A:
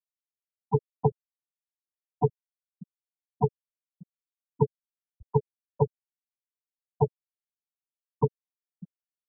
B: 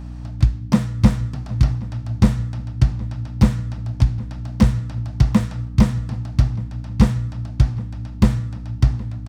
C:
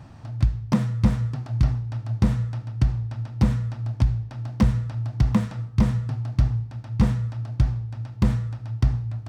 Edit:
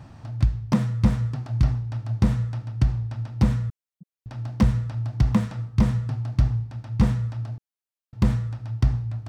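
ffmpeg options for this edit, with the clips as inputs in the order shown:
-filter_complex "[0:a]asplit=2[a][b];[2:a]asplit=3[c][d][e];[c]atrim=end=3.702[f];[a]atrim=start=3.698:end=4.262[g];[d]atrim=start=4.258:end=7.582[h];[b]atrim=start=7.578:end=8.132[i];[e]atrim=start=8.128[j];[f][g]acrossfade=d=0.004:c1=hsin:c2=hsin[k];[k][h]acrossfade=d=0.004:c1=hsin:c2=hsin[l];[l][i]acrossfade=d=0.004:c1=hsin:c2=hsin[m];[m][j]acrossfade=d=0.004:c1=hsin:c2=hsin"

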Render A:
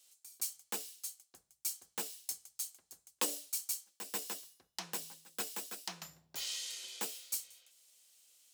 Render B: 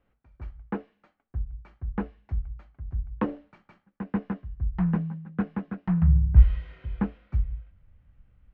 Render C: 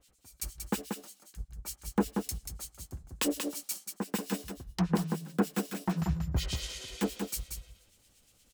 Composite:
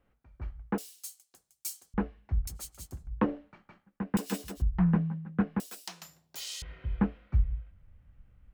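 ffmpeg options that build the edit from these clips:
-filter_complex "[0:a]asplit=2[a][b];[2:a]asplit=2[c][d];[1:a]asplit=5[e][f][g][h][i];[e]atrim=end=0.782[j];[a]atrim=start=0.778:end=1.942[k];[f]atrim=start=1.938:end=2.472[l];[c]atrim=start=2.468:end=3.072[m];[g]atrim=start=3.068:end=4.172[n];[d]atrim=start=4.168:end=4.622[o];[h]atrim=start=4.618:end=5.602[p];[b]atrim=start=5.598:end=6.622[q];[i]atrim=start=6.618[r];[j][k]acrossfade=d=0.004:c1=hsin:c2=hsin[s];[s][l]acrossfade=d=0.004:c1=hsin:c2=hsin[t];[t][m]acrossfade=d=0.004:c1=hsin:c2=hsin[u];[u][n]acrossfade=d=0.004:c1=hsin:c2=hsin[v];[v][o]acrossfade=d=0.004:c1=hsin:c2=hsin[w];[w][p]acrossfade=d=0.004:c1=hsin:c2=hsin[x];[x][q]acrossfade=d=0.004:c1=hsin:c2=hsin[y];[y][r]acrossfade=d=0.004:c1=hsin:c2=hsin"

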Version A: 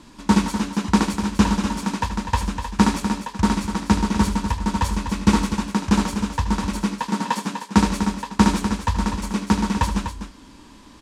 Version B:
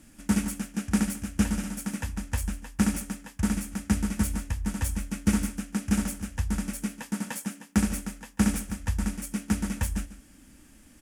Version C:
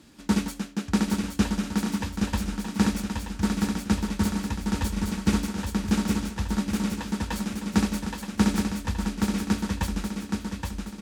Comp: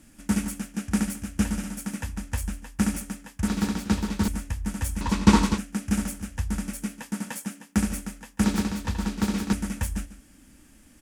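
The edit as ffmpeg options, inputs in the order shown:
-filter_complex "[2:a]asplit=2[a][b];[1:a]asplit=4[c][d][e][f];[c]atrim=end=3.482[g];[a]atrim=start=3.478:end=4.282[h];[d]atrim=start=4.278:end=5.012[i];[0:a]atrim=start=5.008:end=5.582[j];[e]atrim=start=5.578:end=8.442[k];[b]atrim=start=8.438:end=9.532[l];[f]atrim=start=9.528[m];[g][h]acrossfade=d=0.004:c1=hsin:c2=hsin[n];[n][i]acrossfade=d=0.004:c1=hsin:c2=hsin[o];[o][j]acrossfade=d=0.004:c1=hsin:c2=hsin[p];[p][k]acrossfade=d=0.004:c1=hsin:c2=hsin[q];[q][l]acrossfade=d=0.004:c1=hsin:c2=hsin[r];[r][m]acrossfade=d=0.004:c1=hsin:c2=hsin"

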